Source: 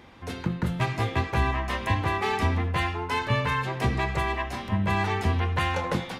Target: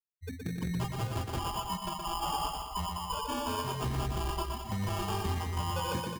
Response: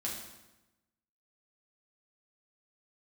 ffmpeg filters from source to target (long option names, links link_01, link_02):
-filter_complex "[0:a]asettb=1/sr,asplit=3[link_01][link_02][link_03];[link_01]atrim=end=1.394[link_04];[link_02]atrim=start=1.39:end=3.64,asetpts=PTS-STARTPTS,afade=type=in:duration=0.004:curve=qsin,afade=type=out:start_time=2.246:duration=0.004:curve=qsin,highpass=frequency=580:width=0.5412,highpass=frequency=580:width=1.3066[link_05];[link_03]atrim=start=3.636[link_06];[link_04][link_05]acrossfade=duration=0.004:curve1=hsin:curve2=qsin[link_07];[link_07][link_06]acrossfade=duration=0.004:curve1=qsin:curve2=hsin,afftfilt=real='re*gte(hypot(re,im),0.112)':imag='im*gte(hypot(re,im),0.112)':win_size=1024:overlap=0.75,aemphasis=mode=production:type=75fm,afftfilt=real='re*gte(hypot(re,im),0.0251)':imag='im*gte(hypot(re,im),0.0251)':win_size=1024:overlap=0.75,highshelf=frequency=2600:gain=10.5,alimiter=limit=-21.5dB:level=0:latency=1:release=333,asoftclip=type=tanh:threshold=-28dB,adynamicsmooth=sensitivity=1.5:basefreq=2900,acrusher=samples=22:mix=1:aa=0.000001,aecho=1:1:120|210|277.5|328.1|366.1:0.631|0.398|0.251|0.158|0.1"